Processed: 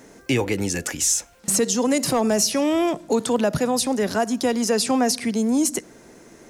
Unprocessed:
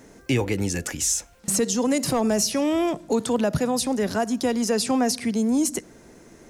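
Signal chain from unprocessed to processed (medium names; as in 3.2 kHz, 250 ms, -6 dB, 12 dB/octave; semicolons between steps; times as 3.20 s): bass shelf 140 Hz -8 dB; trim +3 dB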